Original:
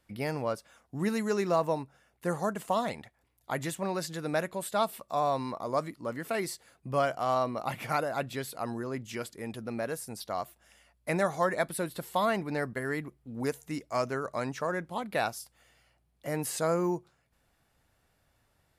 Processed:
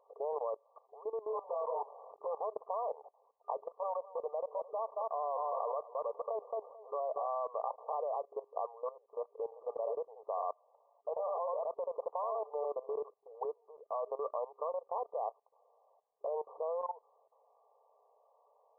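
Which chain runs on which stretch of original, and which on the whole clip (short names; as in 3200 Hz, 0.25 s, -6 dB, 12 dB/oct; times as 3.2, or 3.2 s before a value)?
1.28–2.27 compressor 1.5:1, threshold -56 dBFS + sample leveller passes 5 + doubler 23 ms -2 dB
3.59–7.27 feedback echo 0.22 s, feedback 33%, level -10.5 dB + careless resampling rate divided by 3×, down none, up hold
9.44–13.04 echo 77 ms -3.5 dB + compressor 2.5:1, threshold -31 dBFS
whole clip: compressor 2.5:1, threshold -45 dBFS; FFT band-pass 410–1200 Hz; level quantiser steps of 17 dB; gain +15.5 dB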